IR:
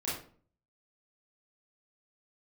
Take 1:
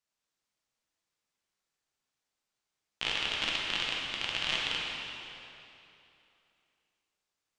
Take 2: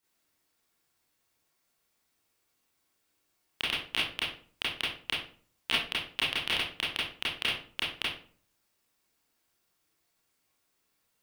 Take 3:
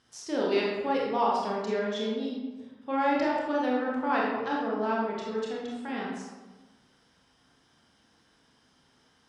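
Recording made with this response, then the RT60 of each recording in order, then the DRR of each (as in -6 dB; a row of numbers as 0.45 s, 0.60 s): 2; 3.0 s, 0.45 s, 1.3 s; -4.0 dB, -9.0 dB, -4.0 dB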